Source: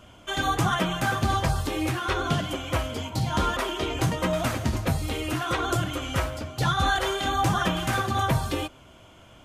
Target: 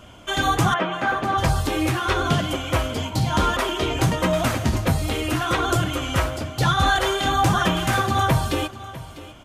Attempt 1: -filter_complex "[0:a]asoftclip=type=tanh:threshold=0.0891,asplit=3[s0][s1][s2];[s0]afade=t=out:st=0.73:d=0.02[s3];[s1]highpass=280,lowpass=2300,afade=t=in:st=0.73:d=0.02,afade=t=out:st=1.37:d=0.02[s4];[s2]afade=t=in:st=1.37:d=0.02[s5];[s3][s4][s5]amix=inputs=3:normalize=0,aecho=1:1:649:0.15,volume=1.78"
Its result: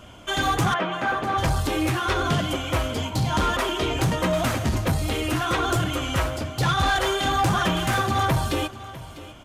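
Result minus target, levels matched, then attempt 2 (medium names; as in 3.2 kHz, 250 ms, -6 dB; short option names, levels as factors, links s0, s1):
saturation: distortion +15 dB
-filter_complex "[0:a]asoftclip=type=tanh:threshold=0.282,asplit=3[s0][s1][s2];[s0]afade=t=out:st=0.73:d=0.02[s3];[s1]highpass=280,lowpass=2300,afade=t=in:st=0.73:d=0.02,afade=t=out:st=1.37:d=0.02[s4];[s2]afade=t=in:st=1.37:d=0.02[s5];[s3][s4][s5]amix=inputs=3:normalize=0,aecho=1:1:649:0.15,volume=1.78"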